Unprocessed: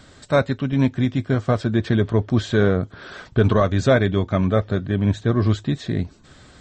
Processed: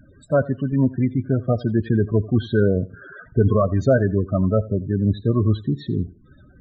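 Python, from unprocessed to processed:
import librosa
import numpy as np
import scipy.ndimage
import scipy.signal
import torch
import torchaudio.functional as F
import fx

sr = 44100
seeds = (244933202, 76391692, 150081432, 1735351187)

y = fx.spec_topn(x, sr, count=16)
y = fx.echo_feedback(y, sr, ms=85, feedback_pct=21, wet_db=-20.5)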